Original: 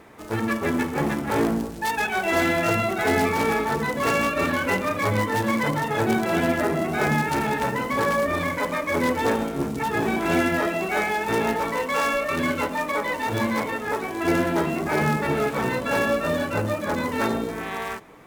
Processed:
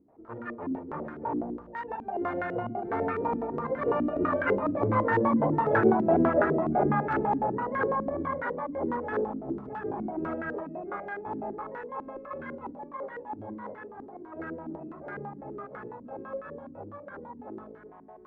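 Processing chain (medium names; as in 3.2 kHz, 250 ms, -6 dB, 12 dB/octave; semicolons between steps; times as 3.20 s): Doppler pass-by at 5.70 s, 17 m/s, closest 22 m; step-sequenced low-pass 12 Hz 280–1500 Hz; trim -4 dB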